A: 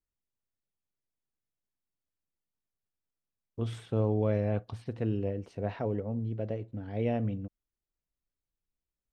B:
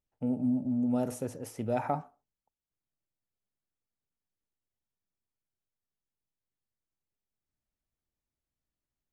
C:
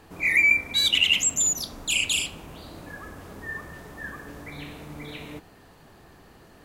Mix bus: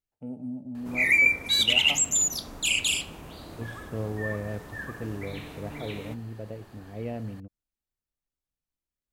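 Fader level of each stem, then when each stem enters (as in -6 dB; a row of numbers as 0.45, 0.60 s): -4.5, -7.0, -1.0 dB; 0.00, 0.00, 0.75 s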